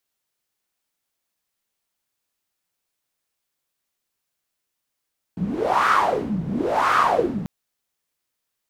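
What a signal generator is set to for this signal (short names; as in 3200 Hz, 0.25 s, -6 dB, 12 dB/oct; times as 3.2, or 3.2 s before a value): wind-like swept noise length 2.09 s, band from 170 Hz, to 1300 Hz, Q 6.4, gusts 2, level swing 9.5 dB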